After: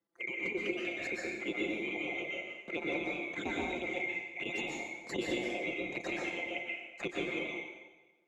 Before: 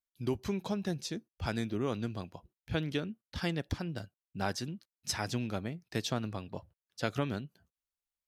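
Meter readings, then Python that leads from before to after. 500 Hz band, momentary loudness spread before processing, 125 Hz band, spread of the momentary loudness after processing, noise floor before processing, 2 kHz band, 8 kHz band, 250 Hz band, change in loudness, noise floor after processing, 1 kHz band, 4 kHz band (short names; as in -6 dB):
0.0 dB, 10 LU, -16.0 dB, 5 LU, under -85 dBFS, +8.5 dB, -8.0 dB, -3.0 dB, +0.5 dB, -65 dBFS, -2.5 dB, -1.5 dB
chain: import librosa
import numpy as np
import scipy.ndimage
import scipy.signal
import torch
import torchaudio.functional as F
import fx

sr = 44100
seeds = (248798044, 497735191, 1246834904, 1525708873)

p1 = fx.band_swap(x, sr, width_hz=2000)
p2 = p1 + 0.5 * np.pad(p1, (int(5.8 * sr / 1000.0), 0))[:len(p1)]
p3 = fx.leveller(p2, sr, passes=1)
p4 = fx.over_compress(p3, sr, threshold_db=-34.0, ratio=-1.0)
p5 = p3 + (p4 * librosa.db_to_amplitude(1.0))
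p6 = fx.env_flanger(p5, sr, rest_ms=6.0, full_db=-22.5)
p7 = fx.bandpass_q(p6, sr, hz=330.0, q=1.6)
p8 = fx.chopper(p7, sr, hz=11.0, depth_pct=65, duty_pct=80)
p9 = fx.rev_plate(p8, sr, seeds[0], rt60_s=0.91, hf_ratio=0.95, predelay_ms=110, drr_db=-4.0)
p10 = fx.band_squash(p9, sr, depth_pct=40)
y = p10 * librosa.db_to_amplitude(7.5)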